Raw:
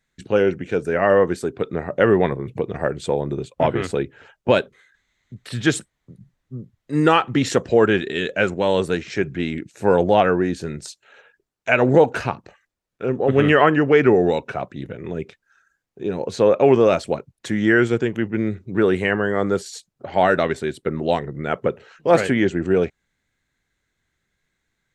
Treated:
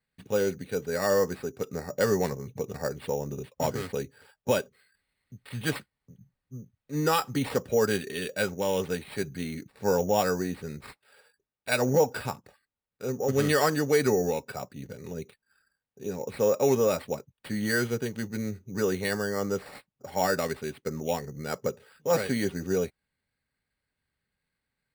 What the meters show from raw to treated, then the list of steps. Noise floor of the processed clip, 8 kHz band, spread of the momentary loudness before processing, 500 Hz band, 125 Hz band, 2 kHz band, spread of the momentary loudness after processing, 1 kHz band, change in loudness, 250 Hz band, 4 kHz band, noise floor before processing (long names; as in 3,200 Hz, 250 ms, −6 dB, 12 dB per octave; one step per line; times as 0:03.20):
below −85 dBFS, +1.0 dB, 15 LU, −9.0 dB, −8.0 dB, −10.0 dB, 15 LU, −9.5 dB, −9.0 dB, −10.0 dB, −6.0 dB, −77 dBFS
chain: decimation without filtering 7×
notch comb filter 340 Hz
level −8 dB